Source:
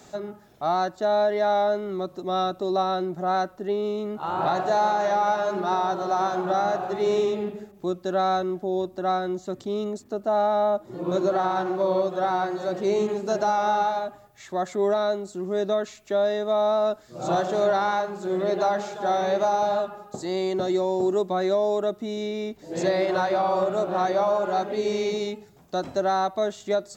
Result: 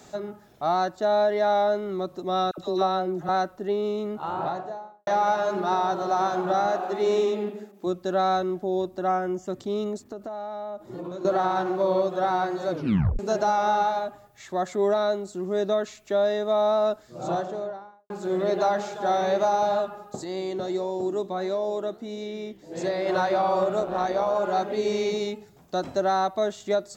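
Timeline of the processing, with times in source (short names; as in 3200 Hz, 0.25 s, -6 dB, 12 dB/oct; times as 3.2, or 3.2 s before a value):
2.51–3.29 dispersion lows, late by 70 ms, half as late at 1100 Hz
4.03–5.07 studio fade out
6.66–7.87 brick-wall FIR high-pass 180 Hz
9.07–9.48 Butterworth band-stop 4000 Hz, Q 2.4
10.06–11.25 compressor 10:1, threshold -31 dBFS
12.7 tape stop 0.49 s
16.9–18.1 studio fade out
20.24–23.06 flange 1.5 Hz, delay 6.6 ms, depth 9.1 ms, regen +85%
23.8–24.36 AM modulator 130 Hz, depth 35%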